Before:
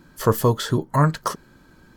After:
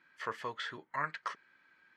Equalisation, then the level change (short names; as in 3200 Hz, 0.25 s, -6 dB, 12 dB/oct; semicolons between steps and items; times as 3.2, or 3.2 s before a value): band-pass 2100 Hz, Q 3.2; air absorption 63 m; 0.0 dB